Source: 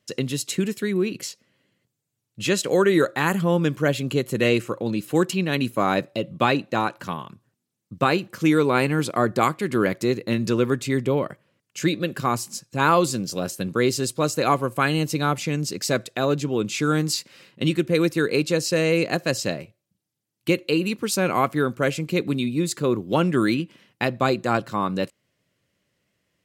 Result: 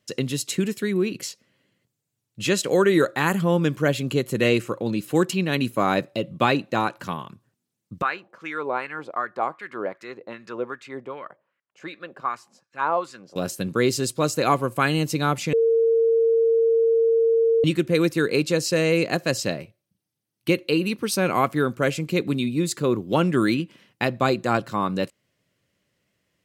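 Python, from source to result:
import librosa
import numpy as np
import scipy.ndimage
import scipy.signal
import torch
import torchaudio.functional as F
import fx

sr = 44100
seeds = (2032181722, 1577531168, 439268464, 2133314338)

y = fx.wah_lfo(x, sr, hz=2.6, low_hz=670.0, high_hz=1700.0, q=2.0, at=(8.02, 13.36))
y = fx.notch(y, sr, hz=7200.0, q=6.4, at=(19.43, 21.23))
y = fx.edit(y, sr, fx.bleep(start_s=15.53, length_s=2.11, hz=456.0, db=-15.5), tone=tone)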